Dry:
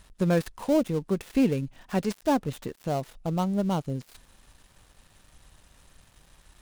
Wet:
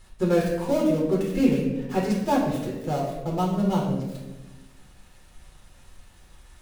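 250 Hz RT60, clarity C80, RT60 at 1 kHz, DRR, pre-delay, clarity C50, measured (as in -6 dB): 1.5 s, 6.0 dB, 0.95 s, -4.5 dB, 6 ms, 3.0 dB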